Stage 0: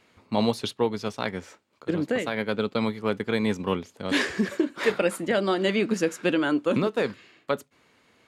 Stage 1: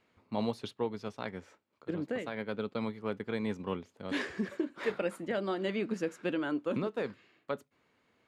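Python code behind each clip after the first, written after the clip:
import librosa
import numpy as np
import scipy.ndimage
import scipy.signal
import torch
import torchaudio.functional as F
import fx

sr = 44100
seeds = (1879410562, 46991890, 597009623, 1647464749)

y = fx.high_shelf(x, sr, hz=3700.0, db=-8.5)
y = F.gain(torch.from_numpy(y), -9.0).numpy()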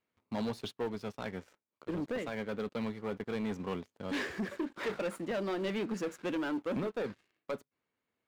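y = fx.leveller(x, sr, passes=3)
y = F.gain(torch.from_numpy(y), -9.0).numpy()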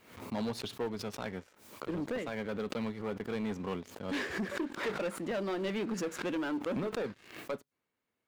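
y = fx.pre_swell(x, sr, db_per_s=91.0)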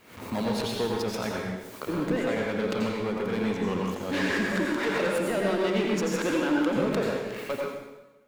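y = fx.rev_plate(x, sr, seeds[0], rt60_s=1.1, hf_ratio=0.9, predelay_ms=75, drr_db=-2.0)
y = F.gain(torch.from_numpy(y), 5.0).numpy()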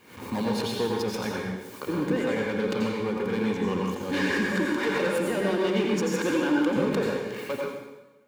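y = fx.notch_comb(x, sr, f0_hz=660.0)
y = F.gain(torch.from_numpy(y), 1.5).numpy()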